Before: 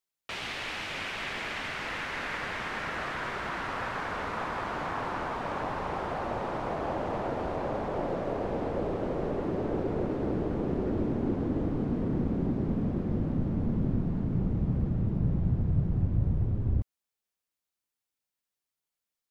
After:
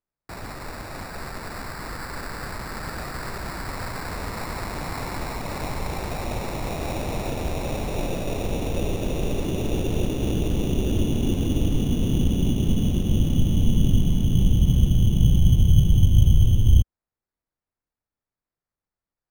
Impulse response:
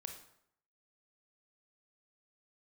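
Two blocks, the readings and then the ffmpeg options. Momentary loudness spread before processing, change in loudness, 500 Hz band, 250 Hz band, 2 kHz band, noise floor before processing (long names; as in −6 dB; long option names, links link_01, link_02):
5 LU, +7.5 dB, +1.5 dB, +5.0 dB, −1.0 dB, below −85 dBFS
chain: -af "aemphasis=mode=reproduction:type=bsi,acrusher=samples=14:mix=1:aa=0.000001"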